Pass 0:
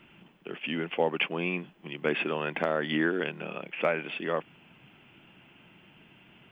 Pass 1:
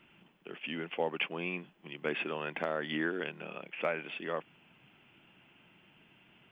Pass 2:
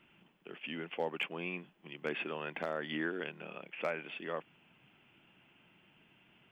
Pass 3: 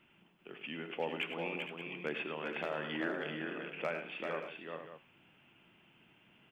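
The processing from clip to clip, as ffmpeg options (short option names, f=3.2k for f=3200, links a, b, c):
-af "lowshelf=f=430:g=-3,volume=-5dB"
-af "asoftclip=type=hard:threshold=-21dB,volume=-3dB"
-af "flanger=delay=8.3:depth=5.6:regen=-87:speed=0.68:shape=sinusoidal,aecho=1:1:80|102|389|461|577:0.133|0.282|0.562|0.299|0.237,volume=3dB"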